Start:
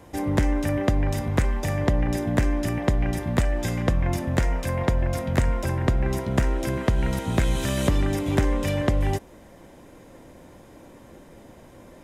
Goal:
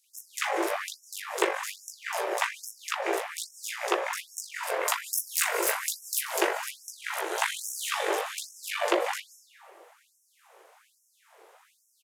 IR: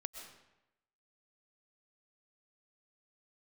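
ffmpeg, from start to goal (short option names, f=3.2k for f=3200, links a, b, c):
-filter_complex "[0:a]asettb=1/sr,asplit=3[a][b][c];[a]atrim=end=4.854[d];[b]atrim=start=4.85:end=6.38,asetpts=PTS-STARTPTS,afade=t=in:d=0.004:c=qsin,afade=t=out:st=1.526:d=0.004:c=qsin,aemphasis=mode=production:type=75kf[e];[c]atrim=start=6.376[f];[d][e]acrossfade=d=0.004:c1=hsin:c2=qsin[g];[g][f]acrossfade=d=0.004:c1=qsin:c2=hsin,asplit=2[h][i];[i]asoftclip=type=tanh:threshold=-16.5dB,volume=-10.5dB[j];[h][j]amix=inputs=2:normalize=0,aeval=exprs='0.447*(cos(1*acos(clip(val(0)/0.447,-1,1)))-cos(1*PI/2))+0.0562*(cos(3*acos(clip(val(0)/0.447,-1,1)))-cos(3*PI/2))+0.0447*(cos(4*acos(clip(val(0)/0.447,-1,1)))-cos(4*PI/2))+0.0708*(cos(6*acos(clip(val(0)/0.447,-1,1)))-cos(6*PI/2))+0.0178*(cos(7*acos(clip(val(0)/0.447,-1,1)))-cos(7*PI/2))':c=same,flanger=delay=16.5:depth=2.3:speed=2,aeval=exprs='abs(val(0))':c=same,acrossover=split=4400[k][l];[k]adelay=40[m];[m][l]amix=inputs=2:normalize=0,asplit=2[n][o];[1:a]atrim=start_sample=2205,asetrate=30429,aresample=44100[p];[o][p]afir=irnorm=-1:irlink=0,volume=4dB[q];[n][q]amix=inputs=2:normalize=0,afftfilt=real='re*gte(b*sr/1024,320*pow(5400/320,0.5+0.5*sin(2*PI*1.2*pts/sr)))':imag='im*gte(b*sr/1024,320*pow(5400/320,0.5+0.5*sin(2*PI*1.2*pts/sr)))':win_size=1024:overlap=0.75"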